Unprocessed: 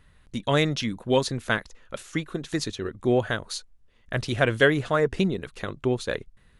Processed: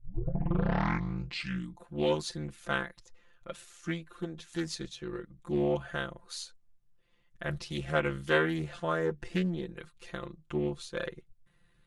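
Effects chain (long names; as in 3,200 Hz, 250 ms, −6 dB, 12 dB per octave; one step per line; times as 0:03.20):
turntable start at the beginning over 0.99 s
time stretch by overlap-add 1.8×, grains 26 ms
highs frequency-modulated by the lows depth 0.43 ms
level −7 dB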